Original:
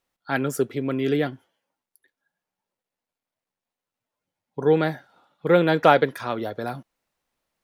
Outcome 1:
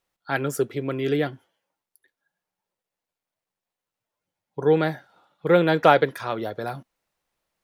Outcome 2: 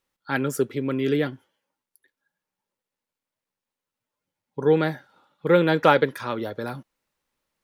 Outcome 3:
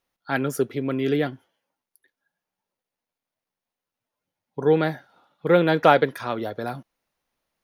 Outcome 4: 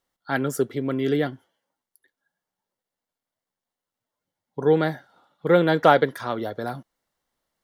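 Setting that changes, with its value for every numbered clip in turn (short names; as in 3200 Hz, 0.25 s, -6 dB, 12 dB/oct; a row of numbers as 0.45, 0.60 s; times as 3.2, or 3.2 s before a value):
notch, frequency: 250, 700, 7700, 2500 Hz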